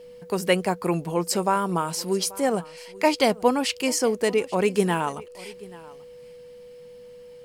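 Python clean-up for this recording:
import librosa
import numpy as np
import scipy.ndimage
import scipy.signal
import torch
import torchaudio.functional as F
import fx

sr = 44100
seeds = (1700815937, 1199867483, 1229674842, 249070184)

y = fx.notch(x, sr, hz=490.0, q=30.0)
y = fx.fix_echo_inverse(y, sr, delay_ms=835, level_db=-21.0)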